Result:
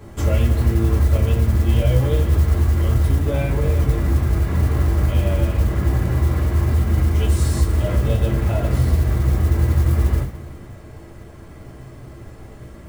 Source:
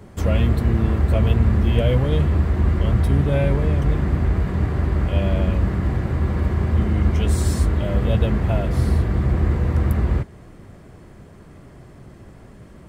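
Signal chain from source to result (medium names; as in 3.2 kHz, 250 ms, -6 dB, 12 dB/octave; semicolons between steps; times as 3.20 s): compression, threshold -19 dBFS, peak gain reduction 8 dB; reverberation, pre-delay 3 ms, DRR -2 dB; modulation noise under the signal 27 dB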